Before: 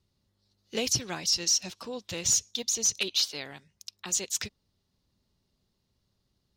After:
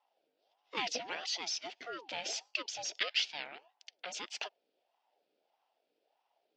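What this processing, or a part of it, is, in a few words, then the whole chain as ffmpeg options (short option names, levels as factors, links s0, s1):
voice changer toy: -filter_complex "[0:a]asettb=1/sr,asplit=3[s0][s1][s2];[s0]atrim=end=1.874[s3];[s1]atrim=start=1.87:end=2.66,asetpts=PTS-STARTPTS,afade=t=in:d=0.004:c=qsin,afade=t=out:st=0.786:d=0.004:c=qsin,bandreject=f=50:t=h:w=6,bandreject=f=100:t=h:w=6,bandreject=f=150:t=h:w=6,bandreject=f=200:t=h:w=6,bandreject=f=250:t=h:w=6,bandreject=f=300:t=h:w=6,bandreject=f=350:t=h:w=6,bandreject=f=400:t=h:w=6,bandreject=f=450:t=h:w=6[s4];[s2]atrim=start=2.656[s5];[s3][s4]acrossfade=d=0.004:c1=hsin:c2=qsin[s6];[s6][s5]acrossfade=d=0.004:c1=qsin:c2=hsin,aeval=exprs='val(0)*sin(2*PI*650*n/s+650*0.45/1.6*sin(2*PI*1.6*n/s))':c=same,highpass=410,equalizer=f=710:t=q:w=4:g=4,equalizer=f=1100:t=q:w=4:g=-9,equalizer=f=2700:t=q:w=4:g=5,equalizer=f=4000:t=q:w=4:g=-5,lowpass=f=4400:w=0.5412,lowpass=f=4400:w=1.3066"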